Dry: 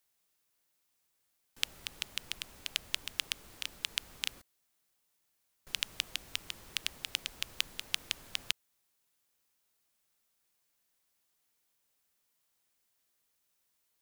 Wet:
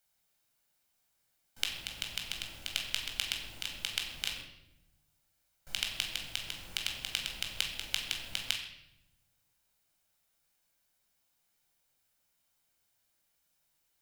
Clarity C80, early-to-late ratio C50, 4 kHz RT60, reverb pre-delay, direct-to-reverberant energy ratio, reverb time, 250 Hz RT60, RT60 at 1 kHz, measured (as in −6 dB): 8.0 dB, 5.5 dB, 0.70 s, 16 ms, 1.0 dB, 0.85 s, 1.5 s, 0.75 s